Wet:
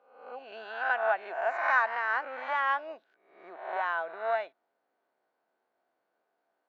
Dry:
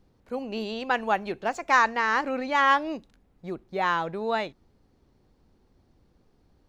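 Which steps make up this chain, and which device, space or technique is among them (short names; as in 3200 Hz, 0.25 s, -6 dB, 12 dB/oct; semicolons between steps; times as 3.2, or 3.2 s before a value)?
spectral swells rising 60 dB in 0.71 s; HPF 270 Hz 6 dB/oct; tin-can telephone (BPF 640–2300 Hz; small resonant body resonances 670/1500 Hz, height 11 dB, ringing for 40 ms); gain -7.5 dB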